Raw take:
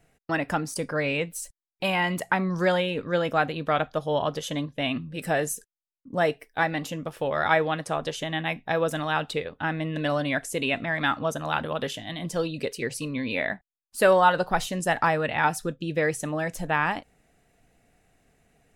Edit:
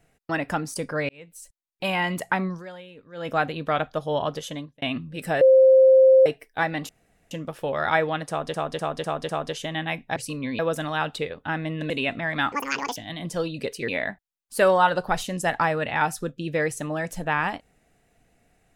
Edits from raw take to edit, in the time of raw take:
0:01.09–0:01.91: fade in
0:02.45–0:03.33: duck −17.5 dB, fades 0.18 s
0:04.21–0:04.82: fade out equal-power
0:05.41–0:06.26: beep over 526 Hz −10.5 dBFS
0:06.89: splice in room tone 0.42 s
0:07.87–0:08.12: repeat, 5 plays
0:10.05–0:10.55: remove
0:11.17–0:11.96: play speed 178%
0:12.88–0:13.31: move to 0:08.74

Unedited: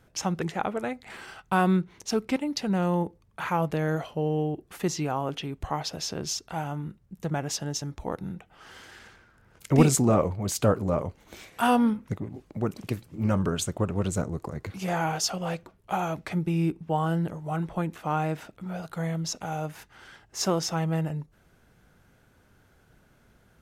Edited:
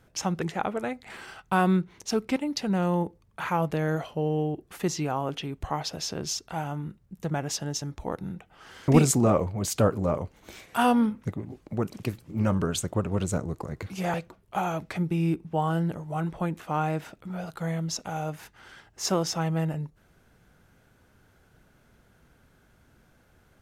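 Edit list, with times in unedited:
0:08.88–0:09.72: remove
0:14.98–0:15.50: remove

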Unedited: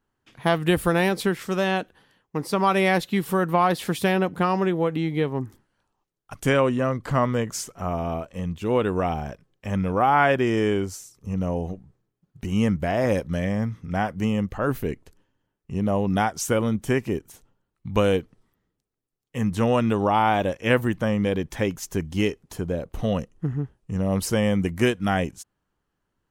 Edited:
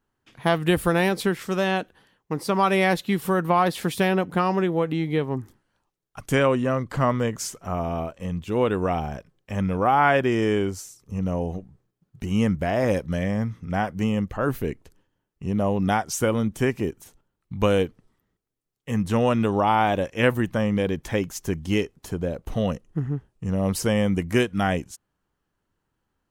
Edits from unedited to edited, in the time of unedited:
compress silence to 85%

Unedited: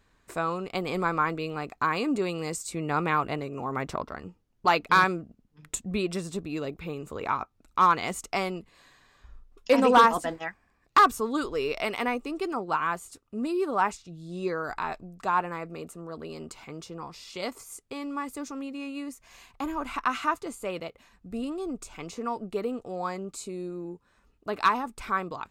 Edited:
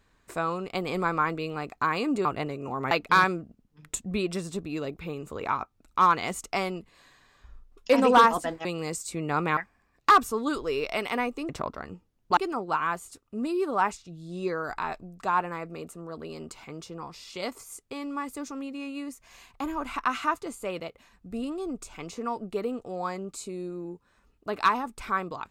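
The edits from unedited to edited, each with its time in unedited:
0:02.25–0:03.17: move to 0:10.45
0:03.83–0:04.71: move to 0:12.37

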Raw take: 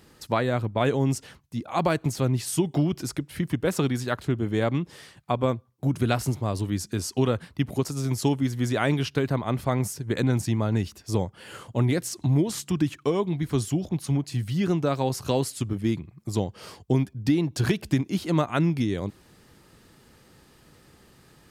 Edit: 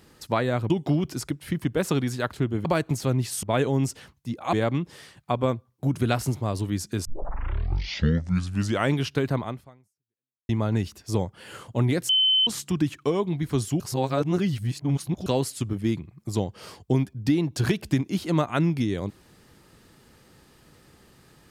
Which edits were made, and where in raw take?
0:00.70–0:01.80: swap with 0:02.58–0:04.53
0:07.05: tape start 1.89 s
0:09.44–0:10.49: fade out exponential
0:12.09–0:12.47: beep over 3,060 Hz −17 dBFS
0:13.80–0:15.26: reverse

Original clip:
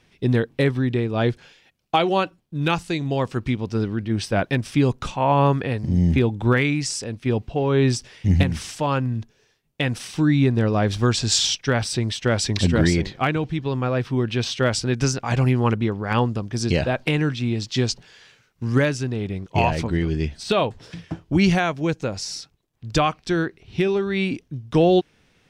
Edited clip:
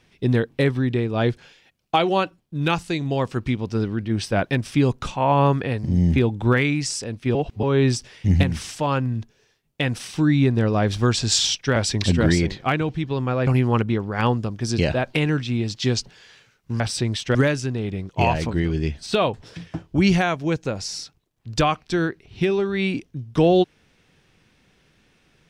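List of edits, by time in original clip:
0:07.35–0:07.63: reverse
0:11.76–0:12.31: move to 0:18.72
0:14.02–0:15.39: remove

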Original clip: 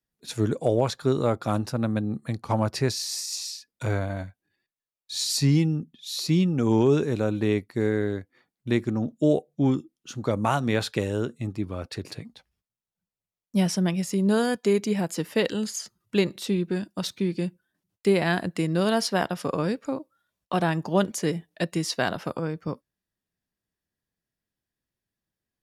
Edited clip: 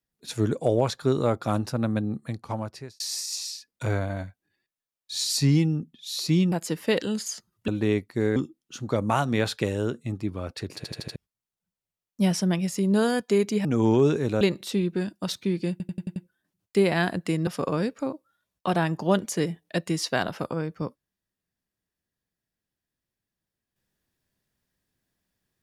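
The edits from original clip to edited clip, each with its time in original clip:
0:02.05–0:03.00: fade out
0:06.52–0:07.28: swap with 0:15.00–0:16.16
0:07.96–0:09.71: remove
0:12.11: stutter in place 0.08 s, 5 plays
0:17.46: stutter 0.09 s, 6 plays
0:18.77–0:19.33: remove

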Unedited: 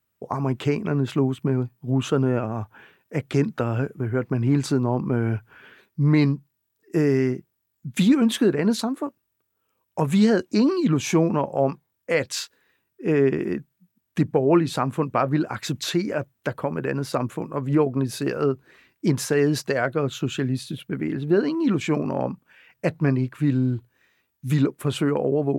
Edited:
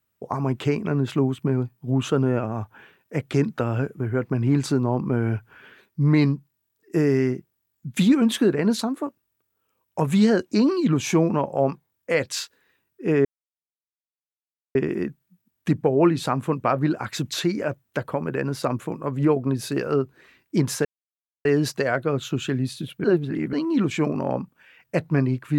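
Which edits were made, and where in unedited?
0:13.25: splice in silence 1.50 s
0:19.35: splice in silence 0.60 s
0:20.94–0:21.43: reverse

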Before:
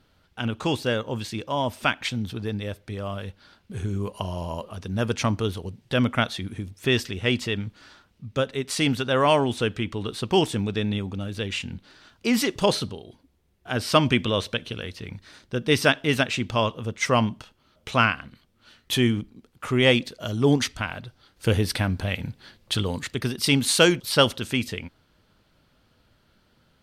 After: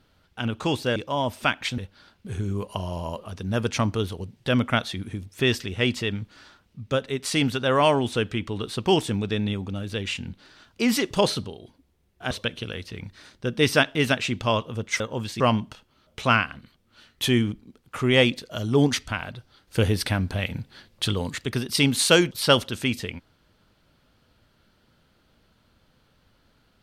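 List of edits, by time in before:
0:00.96–0:01.36: move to 0:17.09
0:02.18–0:03.23: remove
0:13.76–0:14.40: remove

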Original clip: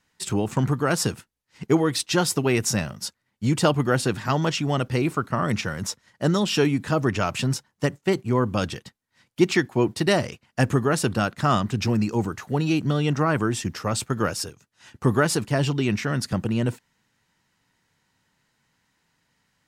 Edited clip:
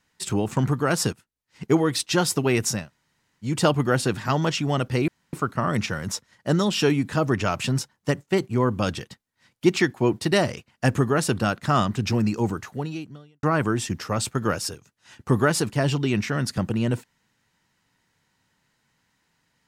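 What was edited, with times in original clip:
0:01.13–0:01.64: fade in, from −17.5 dB
0:02.79–0:03.48: fill with room tone, crossfade 0.24 s
0:05.08: splice in room tone 0.25 s
0:12.33–0:13.18: fade out quadratic

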